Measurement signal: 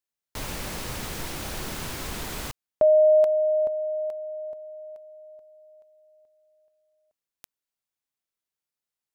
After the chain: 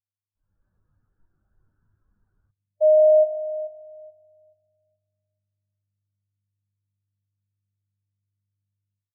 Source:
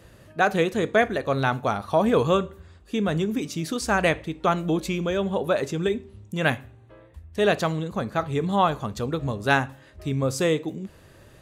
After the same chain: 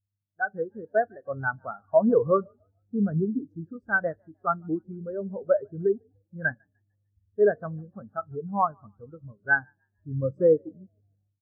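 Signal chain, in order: mains buzz 100 Hz, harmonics 8, -42 dBFS -8 dB/octave; resonant high shelf 2 kHz -8 dB, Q 3; level rider gain up to 8.5 dB; frequency-shifting echo 150 ms, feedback 59%, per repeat +48 Hz, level -16 dB; spectral contrast expander 2.5:1; trim -7.5 dB

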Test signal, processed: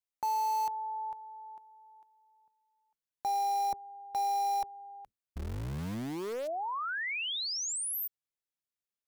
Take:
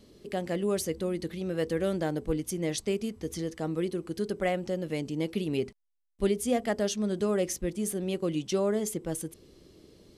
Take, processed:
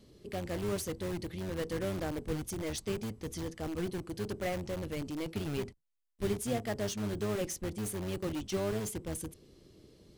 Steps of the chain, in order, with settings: octave divider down 1 oct, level -3 dB; in parallel at -7.5 dB: integer overflow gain 27 dB; on the sum: trim -7 dB

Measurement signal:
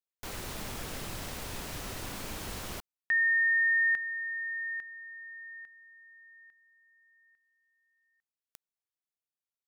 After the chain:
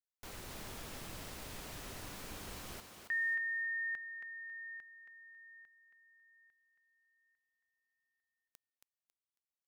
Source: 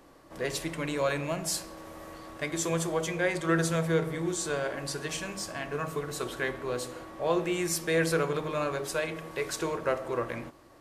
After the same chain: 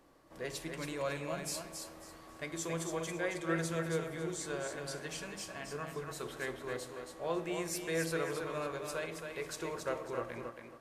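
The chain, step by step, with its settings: thinning echo 274 ms, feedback 27%, high-pass 180 Hz, level -5.5 dB; trim -8.5 dB

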